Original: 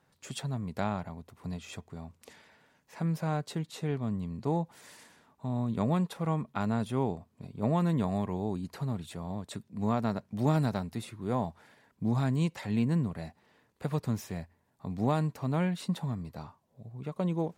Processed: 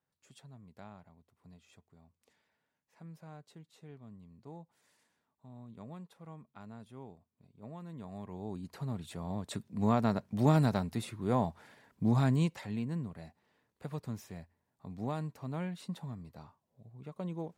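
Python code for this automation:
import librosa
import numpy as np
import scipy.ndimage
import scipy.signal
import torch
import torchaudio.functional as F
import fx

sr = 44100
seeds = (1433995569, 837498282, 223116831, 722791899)

y = fx.gain(x, sr, db=fx.line((7.87, -19.0), (8.53, -7.0), (9.54, 1.0), (12.33, 1.0), (12.81, -8.5)))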